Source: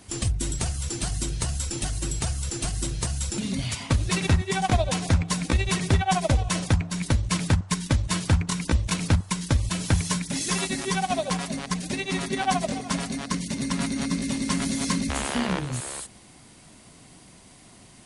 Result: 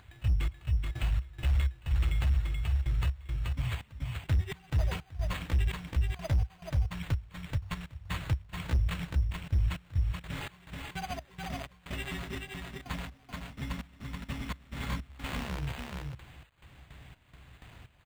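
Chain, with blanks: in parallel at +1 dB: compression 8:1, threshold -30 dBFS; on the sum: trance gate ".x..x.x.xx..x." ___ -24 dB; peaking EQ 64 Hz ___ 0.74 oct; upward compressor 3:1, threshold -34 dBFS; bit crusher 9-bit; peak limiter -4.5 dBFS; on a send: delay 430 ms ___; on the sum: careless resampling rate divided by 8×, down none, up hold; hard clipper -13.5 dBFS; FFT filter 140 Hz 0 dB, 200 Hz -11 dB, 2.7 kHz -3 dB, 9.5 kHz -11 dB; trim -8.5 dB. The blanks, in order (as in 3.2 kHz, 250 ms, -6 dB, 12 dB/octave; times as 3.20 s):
63 bpm, +12.5 dB, -4 dB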